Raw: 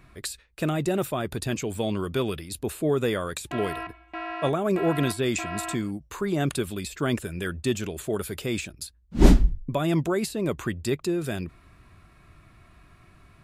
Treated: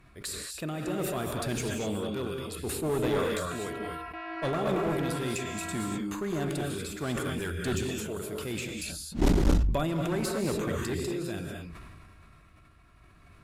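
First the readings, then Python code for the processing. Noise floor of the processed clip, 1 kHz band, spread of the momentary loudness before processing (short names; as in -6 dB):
-56 dBFS, -3.0 dB, 10 LU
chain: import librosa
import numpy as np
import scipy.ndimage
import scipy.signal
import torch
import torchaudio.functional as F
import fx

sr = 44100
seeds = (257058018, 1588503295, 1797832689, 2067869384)

y = x * (1.0 - 0.48 / 2.0 + 0.48 / 2.0 * np.cos(2.0 * np.pi * 0.67 * (np.arange(len(x)) / sr)))
y = fx.rev_gated(y, sr, seeds[0], gate_ms=270, shape='rising', drr_db=1.0)
y = fx.clip_asym(y, sr, top_db=-24.5, bottom_db=-8.5)
y = fx.sustainer(y, sr, db_per_s=25.0)
y = F.gain(torch.from_numpy(y), -4.0).numpy()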